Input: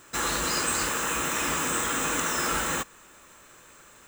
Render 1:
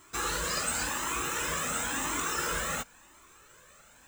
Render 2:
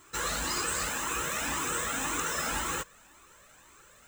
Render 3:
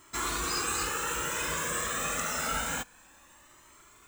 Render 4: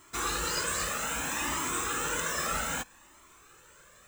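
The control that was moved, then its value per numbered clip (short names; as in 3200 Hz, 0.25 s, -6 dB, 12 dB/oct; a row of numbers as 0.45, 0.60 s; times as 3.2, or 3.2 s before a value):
cascading flanger, rate: 0.95, 1.9, 0.27, 0.63 Hz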